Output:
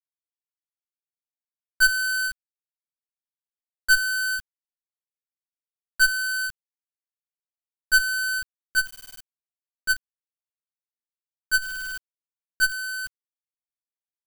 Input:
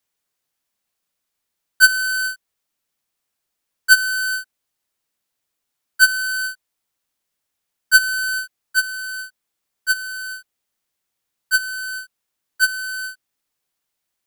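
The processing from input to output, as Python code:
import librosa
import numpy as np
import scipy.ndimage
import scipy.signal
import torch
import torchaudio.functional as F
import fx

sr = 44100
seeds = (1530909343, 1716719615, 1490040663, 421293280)

y = fx.tube_stage(x, sr, drive_db=13.0, bias=0.65)
y = np.where(np.abs(y) >= 10.0 ** (-31.5 / 20.0), y, 0.0)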